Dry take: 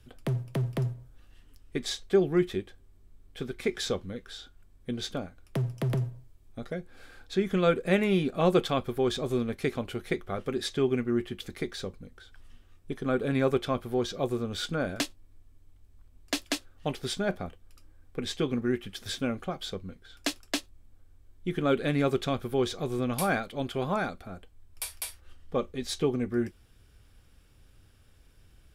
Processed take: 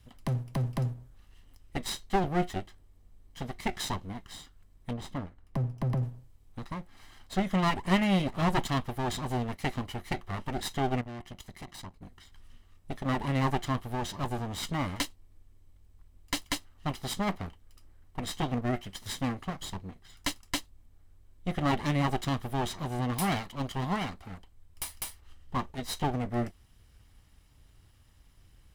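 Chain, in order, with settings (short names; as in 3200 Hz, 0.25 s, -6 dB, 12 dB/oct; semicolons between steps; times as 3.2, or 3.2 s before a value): minimum comb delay 1 ms; 4.93–6.03 high shelf 2400 Hz -11.5 dB; 11.01–12.02 tube stage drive 39 dB, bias 0.8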